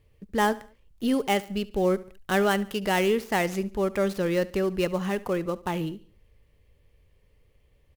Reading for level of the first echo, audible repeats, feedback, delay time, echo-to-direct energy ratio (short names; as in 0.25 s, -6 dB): -19.5 dB, 3, 42%, 71 ms, -18.5 dB